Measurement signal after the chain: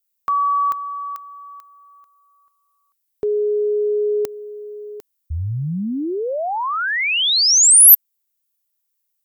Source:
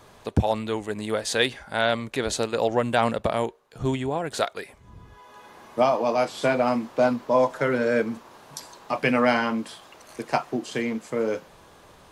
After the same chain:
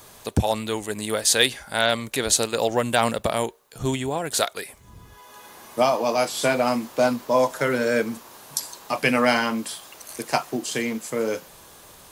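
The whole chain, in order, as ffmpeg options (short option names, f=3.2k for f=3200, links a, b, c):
-af "aemphasis=mode=production:type=75fm,volume=1dB"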